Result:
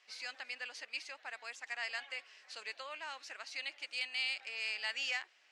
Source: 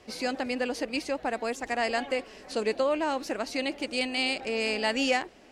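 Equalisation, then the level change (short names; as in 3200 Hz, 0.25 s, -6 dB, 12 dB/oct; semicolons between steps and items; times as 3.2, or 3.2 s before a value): Butterworth band-pass 3700 Hz, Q 0.56; high shelf 4800 Hz -6 dB; -5.0 dB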